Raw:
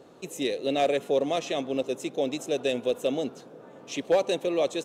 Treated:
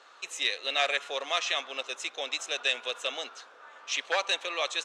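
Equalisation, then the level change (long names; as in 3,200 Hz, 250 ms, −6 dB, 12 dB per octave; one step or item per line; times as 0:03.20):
high-pass with resonance 1,300 Hz, resonance Q 2
high-frequency loss of the air 120 metres
high-shelf EQ 3,400 Hz +11.5 dB
+3.0 dB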